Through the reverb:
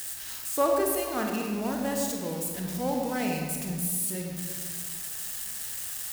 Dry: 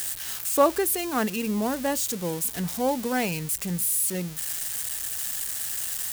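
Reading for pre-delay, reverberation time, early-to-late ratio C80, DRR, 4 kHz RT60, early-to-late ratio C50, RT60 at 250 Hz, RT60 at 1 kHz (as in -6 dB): 31 ms, 1.7 s, 4.0 dB, 0.5 dB, 1.0 s, 2.0 dB, 2.2 s, 1.6 s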